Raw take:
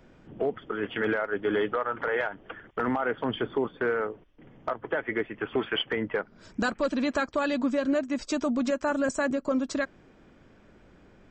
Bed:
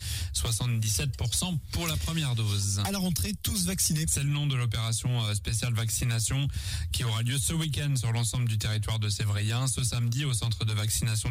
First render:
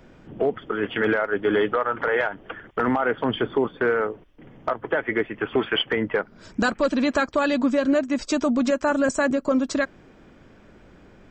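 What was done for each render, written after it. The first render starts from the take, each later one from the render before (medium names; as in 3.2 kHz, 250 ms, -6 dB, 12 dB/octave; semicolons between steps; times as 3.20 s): trim +5.5 dB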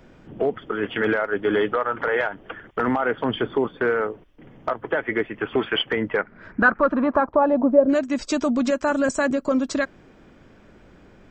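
6.17–7.88 s: resonant low-pass 2.2 kHz -> 600 Hz, resonance Q 2.8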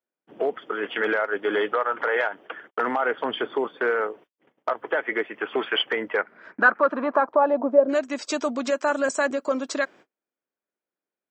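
gate -43 dBFS, range -38 dB; high-pass 410 Hz 12 dB/octave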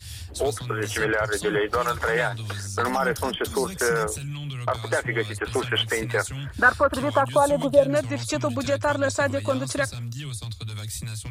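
add bed -5 dB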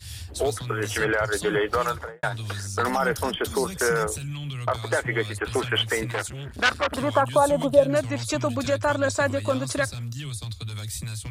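1.82–2.23 s: studio fade out; 6.11–6.98 s: transformer saturation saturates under 2.7 kHz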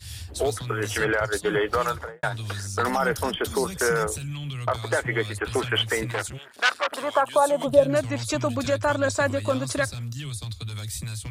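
1.20–1.61 s: expander -26 dBFS; 6.37–7.66 s: high-pass 760 Hz -> 300 Hz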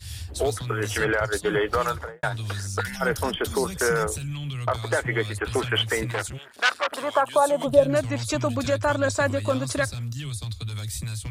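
2.80–3.01 s: time-frequency box 200–1400 Hz -24 dB; bass shelf 68 Hz +6.5 dB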